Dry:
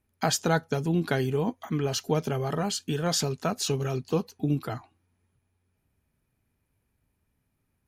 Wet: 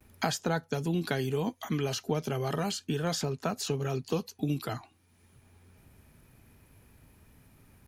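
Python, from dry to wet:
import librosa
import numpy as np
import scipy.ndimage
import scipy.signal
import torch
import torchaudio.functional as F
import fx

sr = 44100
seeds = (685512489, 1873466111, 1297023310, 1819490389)

y = fx.vibrato(x, sr, rate_hz=0.33, depth_cents=21.0)
y = fx.band_squash(y, sr, depth_pct=70)
y = y * librosa.db_to_amplitude(-4.0)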